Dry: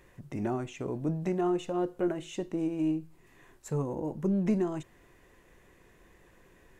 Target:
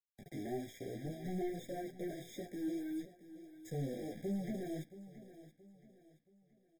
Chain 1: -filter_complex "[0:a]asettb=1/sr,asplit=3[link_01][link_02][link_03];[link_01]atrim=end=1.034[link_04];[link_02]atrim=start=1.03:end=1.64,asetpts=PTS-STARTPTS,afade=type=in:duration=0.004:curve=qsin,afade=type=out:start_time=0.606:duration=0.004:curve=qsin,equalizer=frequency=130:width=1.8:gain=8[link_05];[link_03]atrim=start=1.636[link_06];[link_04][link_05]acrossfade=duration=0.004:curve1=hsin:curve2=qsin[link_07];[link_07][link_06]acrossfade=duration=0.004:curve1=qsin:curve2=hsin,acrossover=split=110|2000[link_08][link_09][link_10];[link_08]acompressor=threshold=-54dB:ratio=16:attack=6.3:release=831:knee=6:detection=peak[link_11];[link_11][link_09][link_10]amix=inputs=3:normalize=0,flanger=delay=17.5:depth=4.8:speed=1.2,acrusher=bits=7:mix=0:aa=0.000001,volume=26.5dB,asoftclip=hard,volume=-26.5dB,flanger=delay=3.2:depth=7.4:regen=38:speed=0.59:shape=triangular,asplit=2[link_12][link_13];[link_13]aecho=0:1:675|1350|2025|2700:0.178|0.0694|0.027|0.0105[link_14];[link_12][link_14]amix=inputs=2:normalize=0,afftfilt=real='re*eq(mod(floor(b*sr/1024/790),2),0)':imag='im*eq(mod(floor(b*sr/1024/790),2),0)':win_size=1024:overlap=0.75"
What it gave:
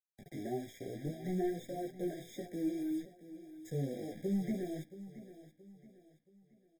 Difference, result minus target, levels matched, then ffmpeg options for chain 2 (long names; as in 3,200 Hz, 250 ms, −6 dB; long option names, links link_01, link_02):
gain into a clipping stage and back: distortion −8 dB
-filter_complex "[0:a]asettb=1/sr,asplit=3[link_01][link_02][link_03];[link_01]atrim=end=1.034[link_04];[link_02]atrim=start=1.03:end=1.64,asetpts=PTS-STARTPTS,afade=type=in:duration=0.004:curve=qsin,afade=type=out:start_time=0.606:duration=0.004:curve=qsin,equalizer=frequency=130:width=1.8:gain=8[link_05];[link_03]atrim=start=1.636[link_06];[link_04][link_05]acrossfade=duration=0.004:curve1=hsin:curve2=qsin[link_07];[link_07][link_06]acrossfade=duration=0.004:curve1=qsin:curve2=hsin,acrossover=split=110|2000[link_08][link_09][link_10];[link_08]acompressor=threshold=-54dB:ratio=16:attack=6.3:release=831:knee=6:detection=peak[link_11];[link_11][link_09][link_10]amix=inputs=3:normalize=0,flanger=delay=17.5:depth=4.8:speed=1.2,acrusher=bits=7:mix=0:aa=0.000001,volume=33dB,asoftclip=hard,volume=-33dB,flanger=delay=3.2:depth=7.4:regen=38:speed=0.59:shape=triangular,asplit=2[link_12][link_13];[link_13]aecho=0:1:675|1350|2025|2700:0.178|0.0694|0.027|0.0105[link_14];[link_12][link_14]amix=inputs=2:normalize=0,afftfilt=real='re*eq(mod(floor(b*sr/1024/790),2),0)':imag='im*eq(mod(floor(b*sr/1024/790),2),0)':win_size=1024:overlap=0.75"